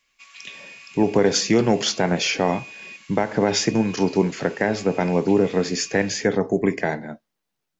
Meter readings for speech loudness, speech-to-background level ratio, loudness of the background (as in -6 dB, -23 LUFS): -21.5 LUFS, 20.0 dB, -41.5 LUFS